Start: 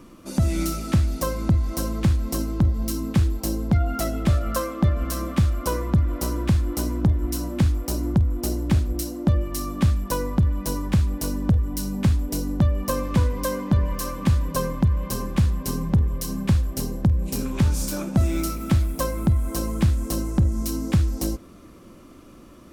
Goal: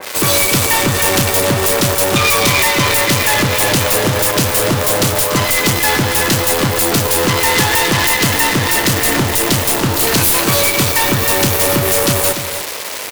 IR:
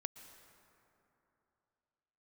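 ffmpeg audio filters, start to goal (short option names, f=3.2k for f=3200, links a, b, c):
-filter_complex "[0:a]highshelf=f=6.6k:g=10,acrusher=bits=5:dc=4:mix=0:aa=0.000001,asplit=2[a][b];[b]highpass=f=720:p=1,volume=32dB,asoftclip=type=tanh:threshold=-10dB[c];[a][c]amix=inputs=2:normalize=0,lowpass=f=4.7k:p=1,volume=-6dB,aecho=1:1:500:0.299,asplit=2[d][e];[1:a]atrim=start_sample=2205,asetrate=70560,aresample=44100,highshelf=f=9.7k:g=8.5[f];[e][f]afir=irnorm=-1:irlink=0,volume=4dB[g];[d][g]amix=inputs=2:normalize=0,asetrate=76440,aresample=44100,adynamicequalizer=threshold=0.0282:dfrequency=2300:dqfactor=0.7:tfrequency=2300:tqfactor=0.7:attack=5:release=100:ratio=0.375:range=3:mode=boostabove:tftype=highshelf,volume=-2dB"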